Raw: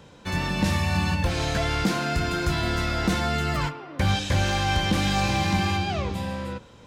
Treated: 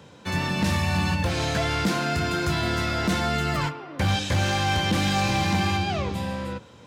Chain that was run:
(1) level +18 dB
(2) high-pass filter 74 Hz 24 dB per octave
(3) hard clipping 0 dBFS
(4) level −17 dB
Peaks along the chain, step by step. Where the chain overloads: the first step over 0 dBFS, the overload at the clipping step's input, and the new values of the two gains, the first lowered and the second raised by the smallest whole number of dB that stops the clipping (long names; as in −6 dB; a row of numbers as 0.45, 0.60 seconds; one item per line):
+5.0, +8.0, 0.0, −17.0 dBFS
step 1, 8.0 dB
step 1 +10 dB, step 4 −9 dB